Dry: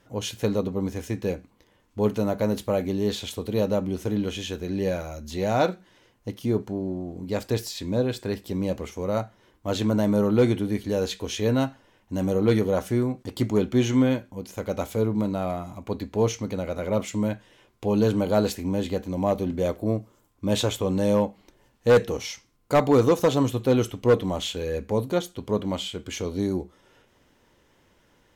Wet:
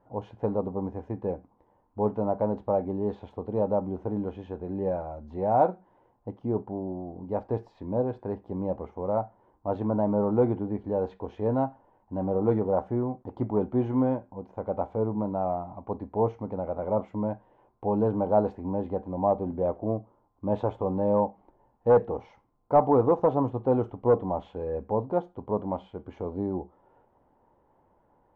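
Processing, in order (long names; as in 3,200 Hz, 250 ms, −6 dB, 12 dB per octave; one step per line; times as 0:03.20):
low-pass with resonance 850 Hz, resonance Q 3.4
level −5.5 dB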